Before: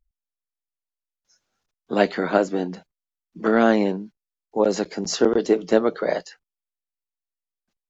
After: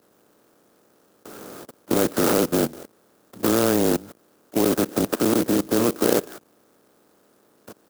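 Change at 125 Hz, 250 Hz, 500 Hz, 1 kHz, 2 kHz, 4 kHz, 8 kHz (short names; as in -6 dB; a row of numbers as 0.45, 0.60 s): +4.5 dB, +1.5 dB, -2.0 dB, -2.5 dB, -3.5 dB, +2.5 dB, n/a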